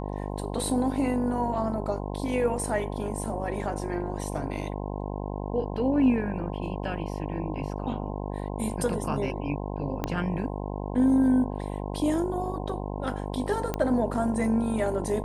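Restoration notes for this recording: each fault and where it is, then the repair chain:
buzz 50 Hz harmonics 21 -33 dBFS
10.04 pop -14 dBFS
13.74 pop -14 dBFS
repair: de-click; de-hum 50 Hz, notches 21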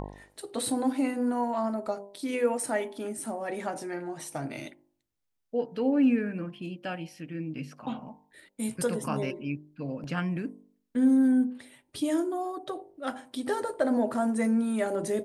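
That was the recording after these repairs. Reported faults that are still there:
10.04 pop

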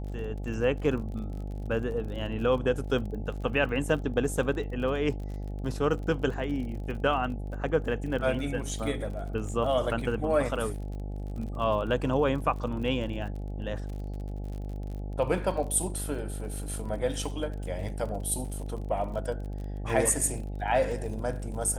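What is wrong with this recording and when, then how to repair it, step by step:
buzz 50 Hz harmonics 17 -35 dBFS
crackle 41/s -38 dBFS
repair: de-click; de-hum 50 Hz, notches 17

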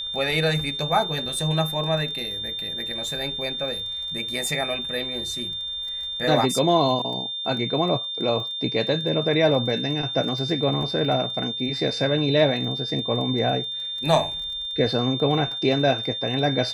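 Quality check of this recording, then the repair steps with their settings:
crackle 21/s -33 dBFS
tone 3600 Hz -28 dBFS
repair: de-click; notch 3600 Hz, Q 30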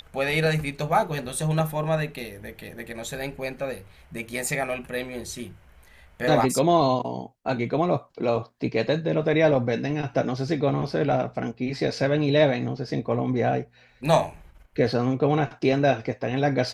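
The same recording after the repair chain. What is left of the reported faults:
none

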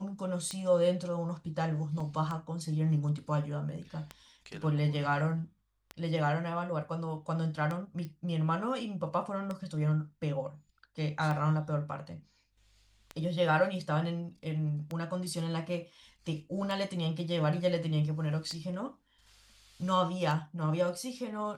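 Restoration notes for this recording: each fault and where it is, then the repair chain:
tick 33 1/3 rpm -23 dBFS
2 gap 4.1 ms
8.05 pop -30 dBFS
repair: de-click; interpolate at 2, 4.1 ms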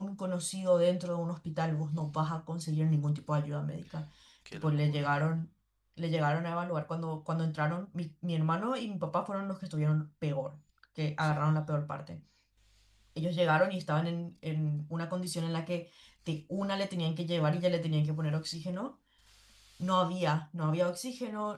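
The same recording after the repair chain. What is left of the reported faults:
none

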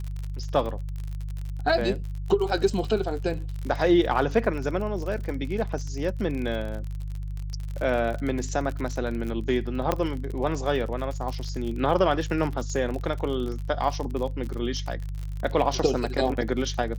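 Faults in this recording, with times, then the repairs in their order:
crackle 47/s -31 dBFS
hum 50 Hz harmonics 3 -32 dBFS
9.92 pop -10 dBFS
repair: de-click; de-hum 50 Hz, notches 3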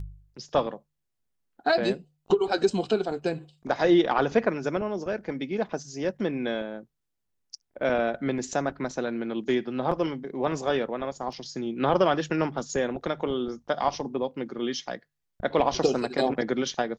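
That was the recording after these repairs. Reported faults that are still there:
9.92 pop

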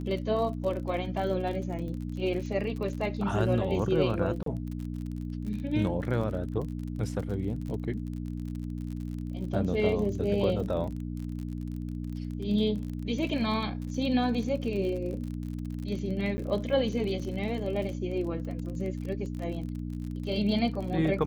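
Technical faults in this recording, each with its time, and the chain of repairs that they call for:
crackle 43/s -36 dBFS
hum 60 Hz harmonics 5 -35 dBFS
4.43–4.46 gap 33 ms
16.37–16.38 gap 10 ms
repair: de-click; de-hum 60 Hz, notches 5; interpolate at 4.43, 33 ms; interpolate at 16.37, 10 ms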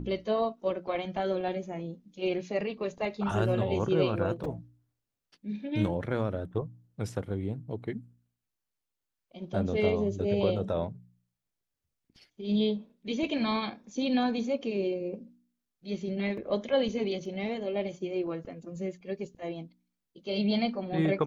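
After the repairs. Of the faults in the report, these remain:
none

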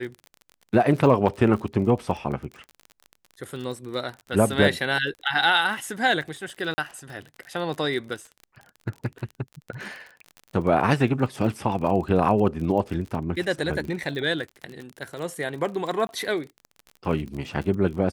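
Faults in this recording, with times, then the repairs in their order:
crackle 35/s -32 dBFS
6.74–6.78 gap 40 ms
16.07–16.09 gap 21 ms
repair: de-click; interpolate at 6.74, 40 ms; interpolate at 16.07, 21 ms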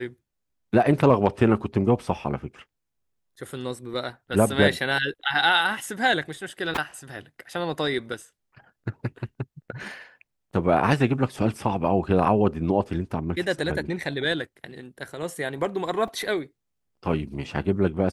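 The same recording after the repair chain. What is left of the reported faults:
none

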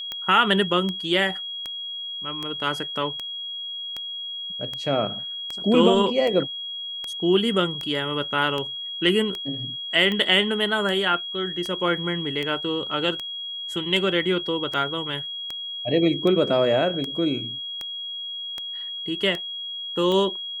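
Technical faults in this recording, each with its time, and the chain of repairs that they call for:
tick 78 rpm -16 dBFS
tone 3300 Hz -30 dBFS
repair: de-click; notch 3300 Hz, Q 30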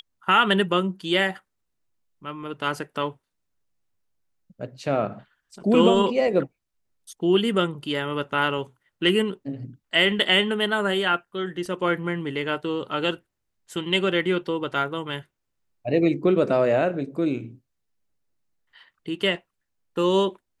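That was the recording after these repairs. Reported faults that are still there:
none

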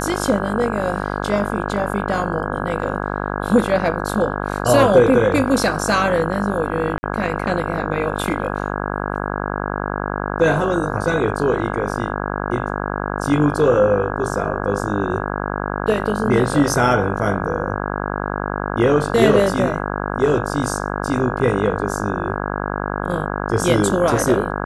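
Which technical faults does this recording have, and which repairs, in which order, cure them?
buzz 50 Hz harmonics 33 -24 dBFS
6.98–7.03 gap 50 ms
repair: de-hum 50 Hz, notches 33; interpolate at 6.98, 50 ms

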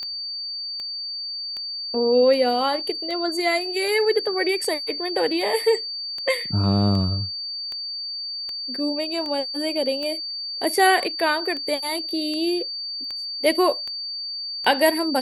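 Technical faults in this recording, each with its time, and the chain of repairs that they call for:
tick 78 rpm -20 dBFS
tone 4600 Hz -28 dBFS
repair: de-click; notch 4600 Hz, Q 30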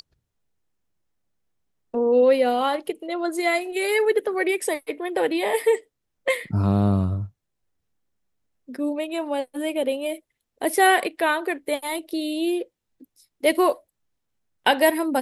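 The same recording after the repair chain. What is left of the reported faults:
none

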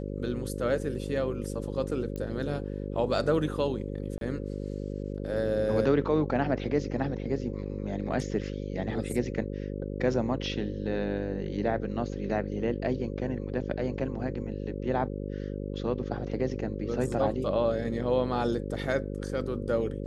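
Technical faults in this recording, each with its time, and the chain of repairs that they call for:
buzz 50 Hz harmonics 11 -35 dBFS
2.16 pop -24 dBFS
4.18–4.21 gap 32 ms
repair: de-click; de-hum 50 Hz, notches 11; interpolate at 4.18, 32 ms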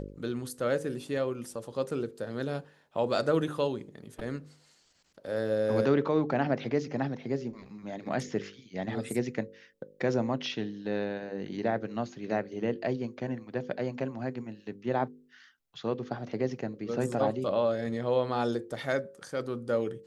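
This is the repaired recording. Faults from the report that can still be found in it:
none

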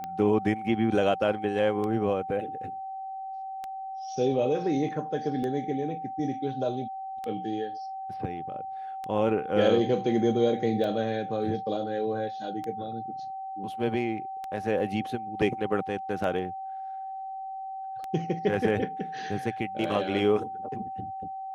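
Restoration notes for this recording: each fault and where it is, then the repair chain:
tick 33 1/3 rpm -22 dBFS
tone 770 Hz -34 dBFS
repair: de-click; notch 770 Hz, Q 30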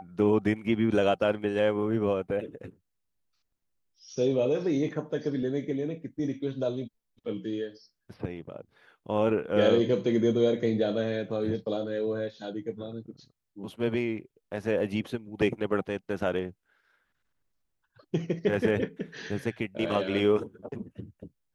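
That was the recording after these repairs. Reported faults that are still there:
none

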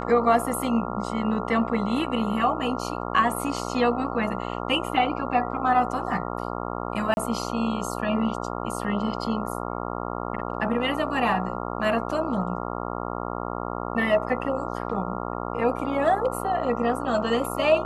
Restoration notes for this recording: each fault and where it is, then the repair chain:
buzz 60 Hz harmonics 23 -31 dBFS
7.14–7.17 gap 31 ms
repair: de-hum 60 Hz, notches 23; interpolate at 7.14, 31 ms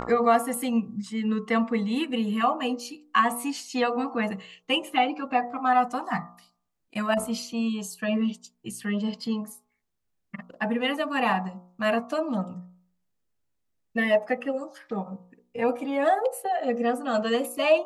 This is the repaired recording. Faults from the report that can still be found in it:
none

